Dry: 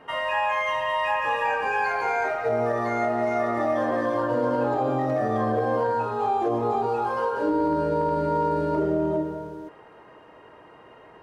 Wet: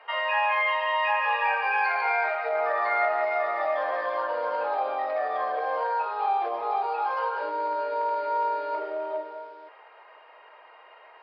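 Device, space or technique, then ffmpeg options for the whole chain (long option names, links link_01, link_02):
musical greeting card: -filter_complex "[0:a]aresample=11025,aresample=44100,highpass=frequency=600:width=0.5412,highpass=frequency=600:width=1.3066,equalizer=frequency=2300:width_type=o:width=0.26:gain=7,asettb=1/sr,asplit=3[link_01][link_02][link_03];[link_01]atrim=end=2.554[link_04];[link_02]atrim=start=2.55:end=3.25,asetpts=PTS-STARTPTS,afade=type=in:duration=0.004:curve=qsin,afade=type=out:start_time=0.696:duration=0.004:curve=qsin,equalizer=frequency=1400:width_type=o:width=1.3:gain=4.5[link_05];[link_03]atrim=start=3.246[link_06];[link_04][link_05]acrossfade=duration=0.004:curve1=hsin:curve2=qsin[link_07];[link_07][link_06]acrossfade=duration=0.004:curve1=qsin:curve2=hsin"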